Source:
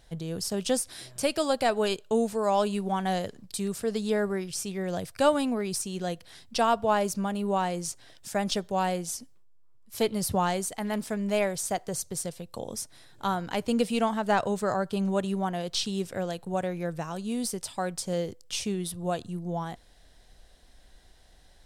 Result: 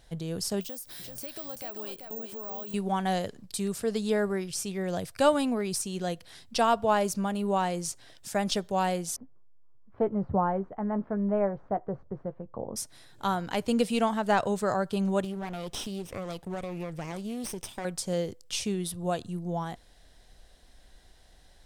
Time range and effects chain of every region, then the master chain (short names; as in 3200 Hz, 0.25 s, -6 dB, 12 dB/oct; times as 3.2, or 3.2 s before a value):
0.61–2.74 compressor 4:1, threshold -42 dBFS + echo 0.386 s -6.5 dB + careless resampling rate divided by 2×, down none, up zero stuff
9.16–12.76 LPF 1300 Hz 24 dB/oct + doubler 15 ms -11.5 dB
15.24–17.85 minimum comb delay 0.35 ms + compressor, threshold -31 dBFS + Doppler distortion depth 0.12 ms
whole clip: dry